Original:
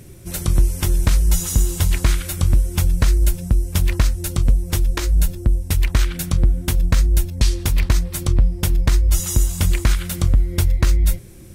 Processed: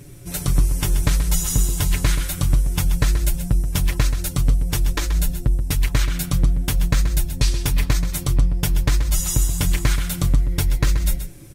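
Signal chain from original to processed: comb 6.9 ms, depth 62%; delay 130 ms -10 dB; trim -1.5 dB

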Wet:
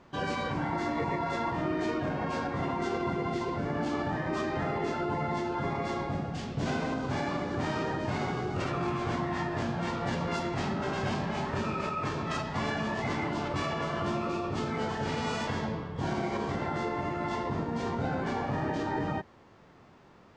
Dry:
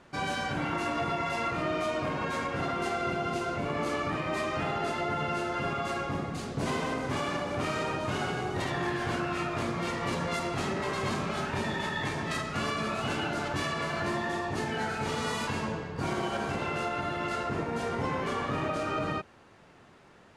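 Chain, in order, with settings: formant shift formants -6 st

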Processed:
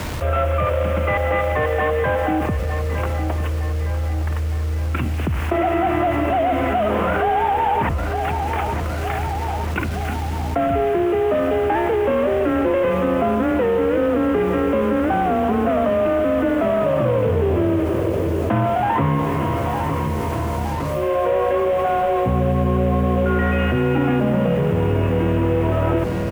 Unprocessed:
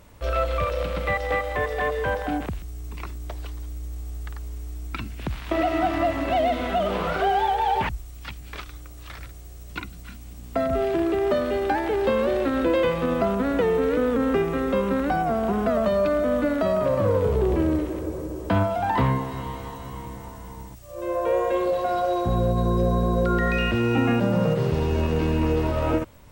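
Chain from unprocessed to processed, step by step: CVSD coder 16 kbps; treble shelf 2.2 kHz -6 dB; bit crusher 9-bit; frequency shift +19 Hz; on a send: feedback delay 911 ms, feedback 53%, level -15 dB; on the sum: level flattener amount 70%; trim +2.5 dB

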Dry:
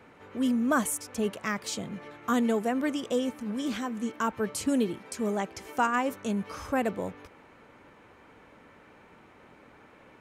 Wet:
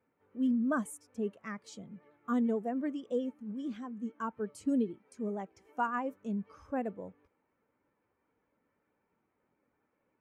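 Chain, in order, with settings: vibrato 11 Hz 38 cents; spectral contrast expander 1.5:1; trim -6.5 dB

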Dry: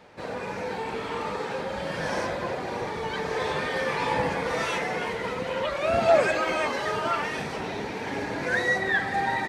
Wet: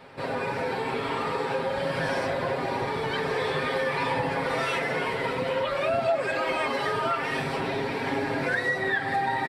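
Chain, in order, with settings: peaking EQ 6.4 kHz -12 dB 0.28 oct; comb 7.4 ms; compression 4:1, threshold -27 dBFS, peak gain reduction 13.5 dB; trim +3 dB

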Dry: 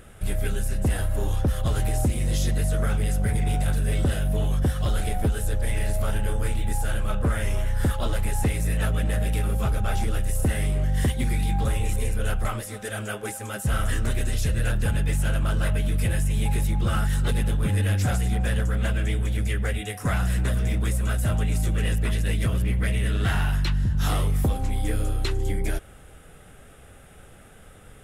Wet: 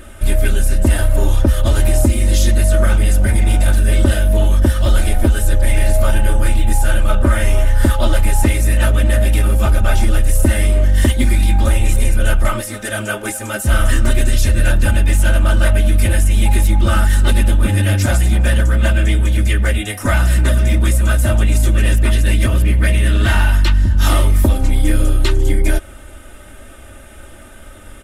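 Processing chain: comb 3.3 ms, depth 88%; trim +8 dB

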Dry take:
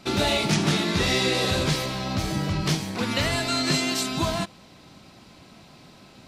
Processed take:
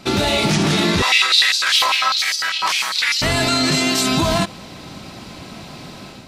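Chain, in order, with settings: level rider gain up to 7 dB; loudness maximiser +14 dB; 1.02–3.22 s: step-sequenced high-pass 10 Hz 980–5000 Hz; trim -7 dB

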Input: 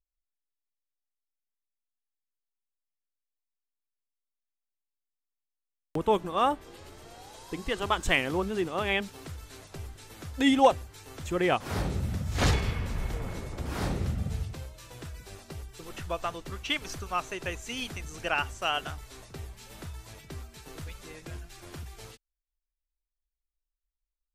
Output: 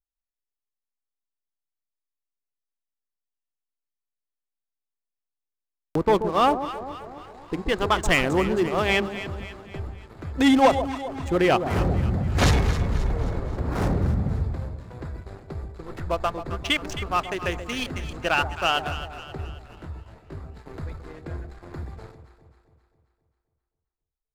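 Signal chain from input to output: local Wiener filter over 15 samples; waveshaping leveller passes 2; on a send: echo whose repeats swap between lows and highs 133 ms, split 900 Hz, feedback 70%, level -9 dB; 19.75–20.46 s: on the sum: detune thickener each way 55 cents

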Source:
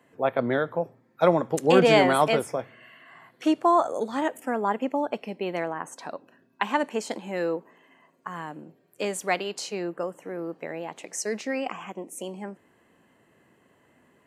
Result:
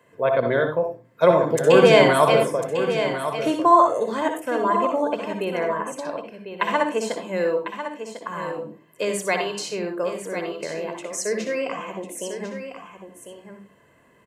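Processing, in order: band-stop 800 Hz, Q 12; delay 1049 ms -9.5 dB; reverberation RT60 0.20 s, pre-delay 58 ms, DRR 5 dB; trim +2 dB

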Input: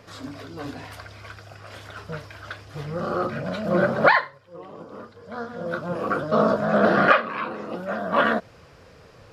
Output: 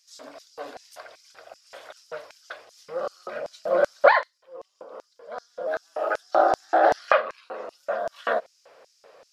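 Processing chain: 5.67–6.99 s: frequency shift +120 Hz; LFO high-pass square 2.6 Hz 570–5800 Hz; trim -4 dB

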